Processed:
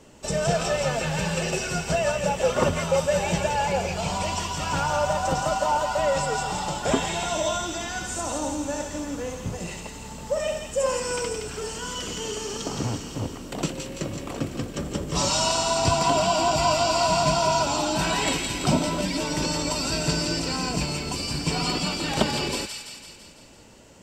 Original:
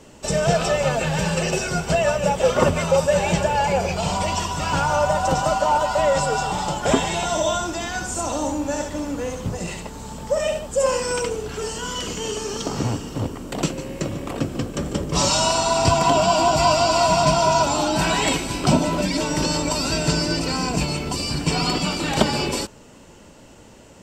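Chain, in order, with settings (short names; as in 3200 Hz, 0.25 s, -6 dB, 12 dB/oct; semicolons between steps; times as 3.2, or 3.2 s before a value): thin delay 0.168 s, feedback 59%, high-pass 2000 Hz, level -4 dB; gain -4.5 dB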